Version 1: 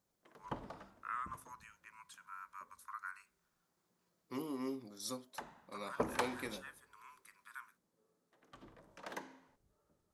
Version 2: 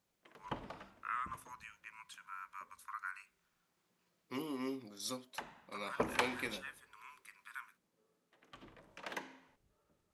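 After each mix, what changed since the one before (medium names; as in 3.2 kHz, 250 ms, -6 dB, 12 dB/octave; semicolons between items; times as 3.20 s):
master: add peaking EQ 2.6 kHz +8 dB 1.1 oct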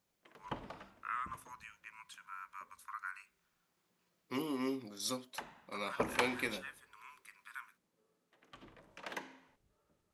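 second voice +3.5 dB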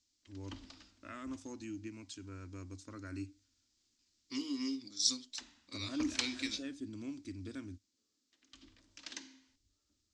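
first voice: remove steep high-pass 980 Hz 96 dB/octave; master: add FFT filter 100 Hz 0 dB, 150 Hz -21 dB, 280 Hz +3 dB, 430 Hz -17 dB, 820 Hz -17 dB, 2.6 kHz -3 dB, 4.9 kHz +12 dB, 7.6 kHz +8 dB, 12 kHz -29 dB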